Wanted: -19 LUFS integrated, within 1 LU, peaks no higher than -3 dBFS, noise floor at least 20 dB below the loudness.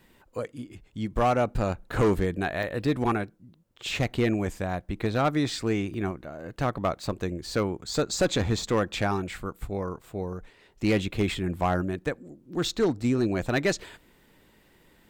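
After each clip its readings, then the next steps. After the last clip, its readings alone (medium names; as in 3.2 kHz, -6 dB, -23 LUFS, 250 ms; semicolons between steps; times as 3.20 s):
clipped samples 0.8%; clipping level -17.0 dBFS; dropouts 3; longest dropout 1.6 ms; loudness -28.0 LUFS; peak level -17.0 dBFS; loudness target -19.0 LUFS
-> clip repair -17 dBFS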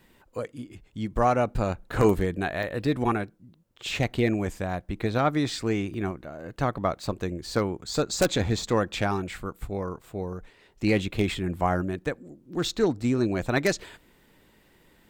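clipped samples 0.0%; dropouts 3; longest dropout 1.6 ms
-> interpolate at 2.63/5.94/8.35 s, 1.6 ms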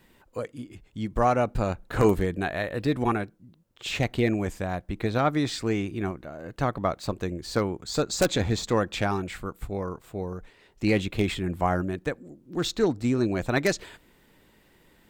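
dropouts 0; loudness -27.5 LUFS; peak level -8.0 dBFS; loudness target -19.0 LUFS
-> trim +8.5 dB; peak limiter -3 dBFS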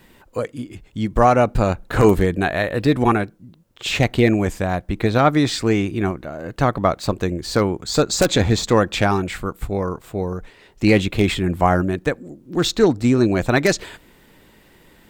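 loudness -19.5 LUFS; peak level -3.0 dBFS; noise floor -52 dBFS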